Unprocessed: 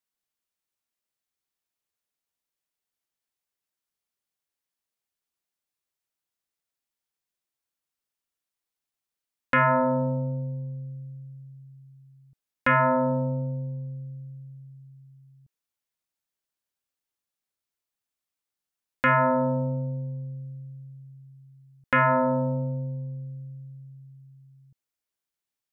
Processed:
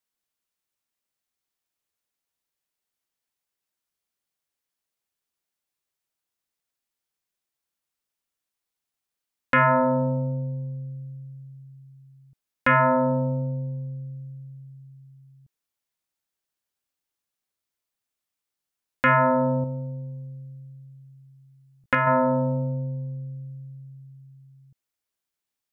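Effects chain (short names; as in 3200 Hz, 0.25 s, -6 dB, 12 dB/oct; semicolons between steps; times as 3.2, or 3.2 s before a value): 19.62–22.07 doubler 18 ms -6.5 dB; gain +2 dB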